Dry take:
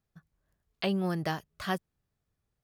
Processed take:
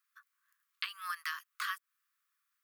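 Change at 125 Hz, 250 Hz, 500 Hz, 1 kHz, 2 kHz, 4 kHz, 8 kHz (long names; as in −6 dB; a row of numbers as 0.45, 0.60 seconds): below −40 dB, below −40 dB, below −40 dB, −4.5 dB, +1.0 dB, −2.0 dB, +1.5 dB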